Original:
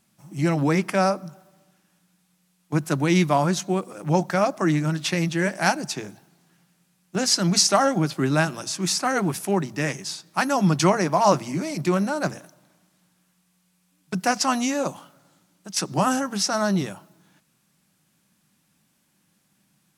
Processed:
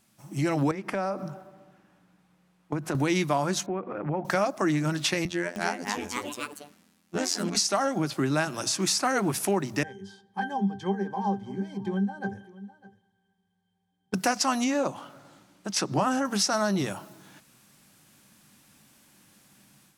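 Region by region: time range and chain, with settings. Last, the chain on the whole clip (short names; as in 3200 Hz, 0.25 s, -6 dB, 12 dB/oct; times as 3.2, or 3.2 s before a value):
0.71–2.95 high shelf 3600 Hz -12 dB + compressor 3:1, threshold -32 dBFS + mismatched tape noise reduction decoder only
3.66–4.25 LPF 2200 Hz 24 dB/oct + compressor 2:1, threshold -35 dBFS
5.25–7.55 high shelf 8400 Hz -7.5 dB + robotiser 86.7 Hz + echoes that change speed 0.31 s, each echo +3 st, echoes 3, each echo -6 dB
9.83–14.14 high shelf 7900 Hz +11.5 dB + octave resonator G, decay 0.16 s + echo 0.603 s -22.5 dB
14.64–16.25 LPF 3500 Hz 6 dB/oct + short-mantissa float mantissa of 8-bit
whole clip: AGC gain up to 8 dB; bell 170 Hz -11 dB 0.21 oct; compressor 2.5:1, threshold -28 dBFS; gain +1 dB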